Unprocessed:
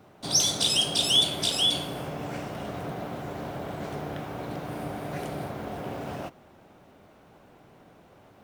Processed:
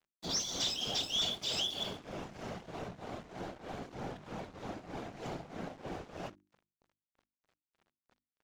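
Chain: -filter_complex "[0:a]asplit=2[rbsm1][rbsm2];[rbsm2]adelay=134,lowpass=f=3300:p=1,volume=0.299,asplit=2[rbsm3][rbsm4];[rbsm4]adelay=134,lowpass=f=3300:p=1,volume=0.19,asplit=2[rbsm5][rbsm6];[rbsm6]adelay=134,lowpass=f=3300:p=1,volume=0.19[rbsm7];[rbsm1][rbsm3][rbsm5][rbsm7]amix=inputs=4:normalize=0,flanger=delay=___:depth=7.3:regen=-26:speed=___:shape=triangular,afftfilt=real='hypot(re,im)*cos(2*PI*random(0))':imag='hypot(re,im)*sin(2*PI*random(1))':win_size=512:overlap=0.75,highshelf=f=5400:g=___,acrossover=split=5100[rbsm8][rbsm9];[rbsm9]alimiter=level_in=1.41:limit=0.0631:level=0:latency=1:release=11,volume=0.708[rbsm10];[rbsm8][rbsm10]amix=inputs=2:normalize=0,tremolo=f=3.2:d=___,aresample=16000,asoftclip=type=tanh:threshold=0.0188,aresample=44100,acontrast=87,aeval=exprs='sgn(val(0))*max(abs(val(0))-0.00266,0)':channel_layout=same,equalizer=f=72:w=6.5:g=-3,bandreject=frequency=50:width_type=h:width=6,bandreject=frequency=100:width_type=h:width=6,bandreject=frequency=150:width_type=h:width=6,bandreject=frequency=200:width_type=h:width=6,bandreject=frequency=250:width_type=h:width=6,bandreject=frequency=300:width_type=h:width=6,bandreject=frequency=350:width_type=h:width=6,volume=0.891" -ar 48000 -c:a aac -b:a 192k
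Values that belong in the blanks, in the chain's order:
4.1, 0.72, 6.5, 0.75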